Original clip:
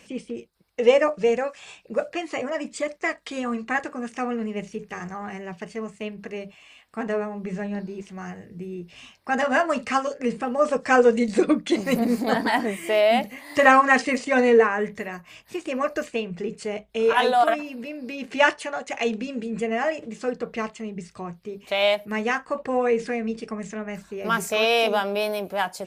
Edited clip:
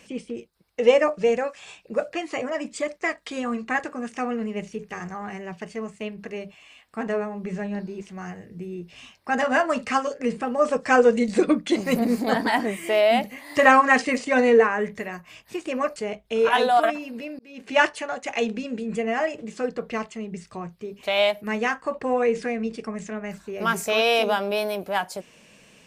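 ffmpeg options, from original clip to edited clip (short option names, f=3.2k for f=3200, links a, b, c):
-filter_complex "[0:a]asplit=3[a][b][c];[a]atrim=end=15.962[d];[b]atrim=start=16.598:end=18.03,asetpts=PTS-STARTPTS,afade=t=out:st=1.428:d=0.004:c=hsin[e];[c]atrim=start=18.03,asetpts=PTS-STARTPTS,afade=t=in:d=0.42[f];[e][f]concat=n=2:v=0:a=1[g];[d][g]acrossfade=d=0.004:c1=hsin:c2=hsin"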